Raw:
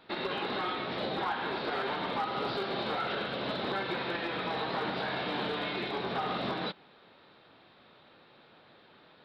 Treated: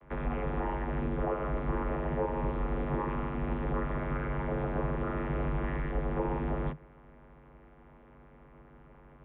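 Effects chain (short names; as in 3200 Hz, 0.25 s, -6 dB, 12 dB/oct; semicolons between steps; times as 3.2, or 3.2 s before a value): limiter -28.5 dBFS, peak gain reduction 3 dB; vocoder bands 32, saw 98.2 Hz; mistuned SSB -350 Hz 240–2600 Hz; gain +7 dB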